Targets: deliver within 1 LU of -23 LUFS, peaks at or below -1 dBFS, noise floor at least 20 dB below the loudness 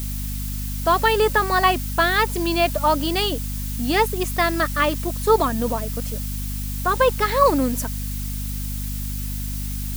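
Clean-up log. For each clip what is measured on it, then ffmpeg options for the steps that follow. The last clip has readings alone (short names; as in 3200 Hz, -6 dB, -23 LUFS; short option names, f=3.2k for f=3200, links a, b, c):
hum 50 Hz; harmonics up to 250 Hz; hum level -25 dBFS; noise floor -27 dBFS; noise floor target -42 dBFS; loudness -21.5 LUFS; peak -3.0 dBFS; loudness target -23.0 LUFS
-> -af "bandreject=f=50:t=h:w=4,bandreject=f=100:t=h:w=4,bandreject=f=150:t=h:w=4,bandreject=f=200:t=h:w=4,bandreject=f=250:t=h:w=4"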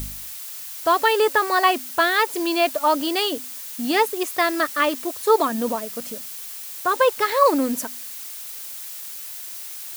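hum none; noise floor -35 dBFS; noise floor target -42 dBFS
-> -af "afftdn=nr=7:nf=-35"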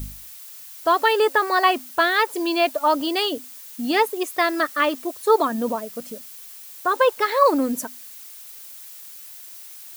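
noise floor -41 dBFS; loudness -21.0 LUFS; peak -4.0 dBFS; loudness target -23.0 LUFS
-> -af "volume=-2dB"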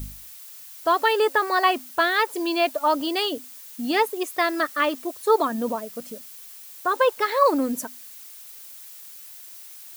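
loudness -23.0 LUFS; peak -6.0 dBFS; noise floor -43 dBFS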